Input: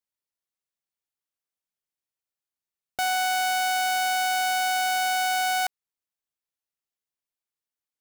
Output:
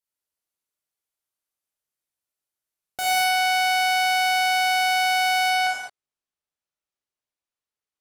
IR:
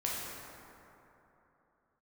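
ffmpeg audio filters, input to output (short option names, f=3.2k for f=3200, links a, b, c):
-filter_complex "[0:a]asetnsamples=n=441:p=0,asendcmd='3.24 highshelf g -2.5;5.5 highshelf g -11.5',highshelf=f=9.8k:g=7.5[a];[1:a]atrim=start_sample=2205,atrim=end_sample=6174,asetrate=26901,aresample=44100[b];[a][b]afir=irnorm=-1:irlink=0,volume=-4dB"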